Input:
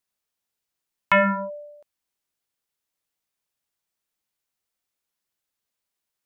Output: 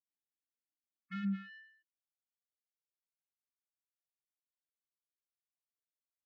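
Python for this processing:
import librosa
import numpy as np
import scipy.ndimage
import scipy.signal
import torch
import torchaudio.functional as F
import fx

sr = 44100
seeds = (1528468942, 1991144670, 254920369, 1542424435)

p1 = fx.wiener(x, sr, points=25)
p2 = fx.peak_eq(p1, sr, hz=380.0, db=14.0, octaves=0.78)
p3 = fx.leveller(p2, sr, passes=3)
p4 = np.clip(10.0 ** (24.5 / 20.0) * p3, -1.0, 1.0) / 10.0 ** (24.5 / 20.0)
p5 = p3 + F.gain(torch.from_numpy(p4), -5.5).numpy()
p6 = fx.spec_topn(p5, sr, count=32)
p7 = fx.filter_sweep_bandpass(p6, sr, from_hz=270.0, to_hz=2400.0, start_s=1.24, end_s=2.44, q=1.8)
p8 = 10.0 ** (-25.5 / 20.0) * np.tanh(p7 / 10.0 ** (-25.5 / 20.0))
p9 = fx.brickwall_bandstop(p8, sr, low_hz=330.0, high_hz=1100.0)
p10 = fx.air_absorb(p9, sr, metres=58.0)
p11 = fx.upward_expand(p10, sr, threshold_db=-40.0, expansion=1.5)
y = F.gain(torch.from_numpy(p11), -5.0).numpy()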